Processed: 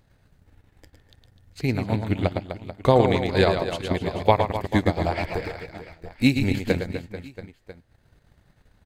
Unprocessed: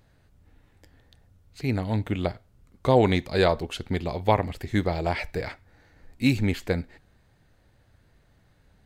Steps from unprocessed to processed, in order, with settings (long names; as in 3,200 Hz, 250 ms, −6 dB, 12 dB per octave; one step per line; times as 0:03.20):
reverse bouncing-ball delay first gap 110 ms, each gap 1.3×, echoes 5
transient designer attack +6 dB, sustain −7 dB
level −1 dB